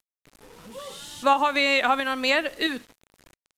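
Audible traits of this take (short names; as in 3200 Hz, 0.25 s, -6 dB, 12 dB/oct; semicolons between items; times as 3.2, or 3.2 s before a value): tremolo saw up 1.5 Hz, depth 40%; a quantiser's noise floor 8-bit, dither none; Vorbis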